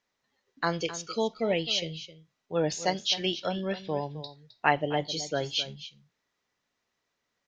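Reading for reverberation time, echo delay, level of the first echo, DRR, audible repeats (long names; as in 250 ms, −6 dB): no reverb audible, 262 ms, −14.0 dB, no reverb audible, 1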